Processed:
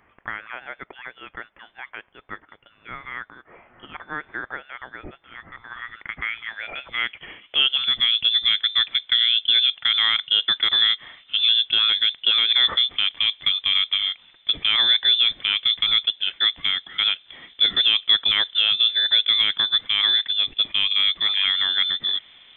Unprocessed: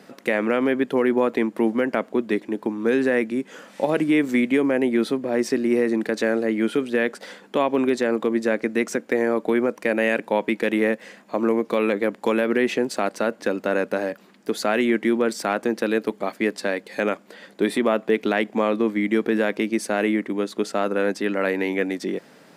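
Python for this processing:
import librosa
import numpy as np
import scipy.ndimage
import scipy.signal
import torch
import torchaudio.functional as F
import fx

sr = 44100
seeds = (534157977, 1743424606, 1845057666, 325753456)

y = fx.filter_sweep_highpass(x, sr, from_hz=3000.0, to_hz=290.0, start_s=5.6, end_s=8.48, q=1.4)
y = fx.freq_invert(y, sr, carrier_hz=3800)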